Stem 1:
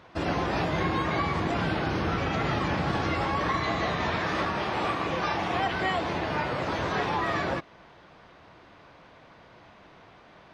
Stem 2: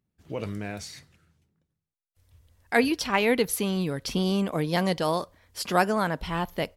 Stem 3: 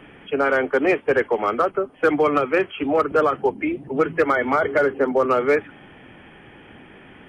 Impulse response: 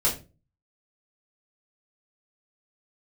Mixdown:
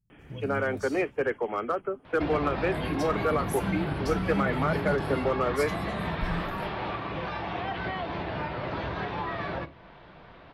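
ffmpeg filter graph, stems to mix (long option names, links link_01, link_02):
-filter_complex "[0:a]lowpass=frequency=4200:width=0.5412,lowpass=frequency=4200:width=1.3066,alimiter=limit=-21.5dB:level=0:latency=1:release=404,acompressor=threshold=-38dB:ratio=1.5,adelay=2050,volume=0.5dB,asplit=2[link_01][link_02];[link_02]volume=-20.5dB[link_03];[1:a]acompressor=threshold=-31dB:ratio=2.5,bass=frequency=250:gain=15,treble=frequency=4000:gain=9,volume=-16.5dB,asplit=2[link_04][link_05];[link_05]volume=-15dB[link_06];[2:a]adelay=100,volume=-9.5dB[link_07];[3:a]atrim=start_sample=2205[link_08];[link_03][link_06]amix=inputs=2:normalize=0[link_09];[link_09][link_08]afir=irnorm=-1:irlink=0[link_10];[link_01][link_04][link_07][link_10]amix=inputs=4:normalize=0,lowshelf=frequency=200:gain=5"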